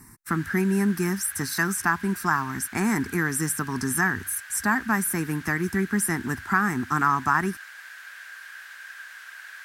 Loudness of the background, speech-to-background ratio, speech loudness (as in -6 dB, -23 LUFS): -41.0 LUFS, 16.0 dB, -25.0 LUFS